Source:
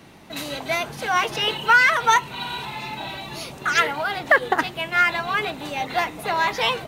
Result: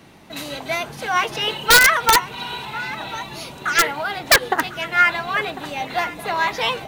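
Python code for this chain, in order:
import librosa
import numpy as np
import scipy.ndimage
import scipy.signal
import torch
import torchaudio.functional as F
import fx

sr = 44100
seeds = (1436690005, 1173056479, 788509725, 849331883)

y = x + 10.0 ** (-15.0 / 20.0) * np.pad(x, (int(1049 * sr / 1000.0), 0))[:len(x)]
y = fx.dynamic_eq(y, sr, hz=1600.0, q=0.79, threshold_db=-19.0, ratio=4.0, max_db=4)
y = (np.mod(10.0 ** (4.5 / 20.0) * y + 1.0, 2.0) - 1.0) / 10.0 ** (4.5 / 20.0)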